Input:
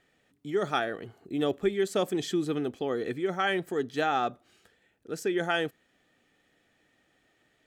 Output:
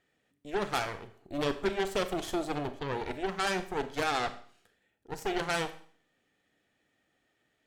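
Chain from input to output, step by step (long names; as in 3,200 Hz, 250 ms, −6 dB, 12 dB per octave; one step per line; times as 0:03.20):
harmonic generator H 3 −18 dB, 8 −15 dB, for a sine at −14 dBFS
four-comb reverb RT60 0.49 s, combs from 28 ms, DRR 10 dB
level −2.5 dB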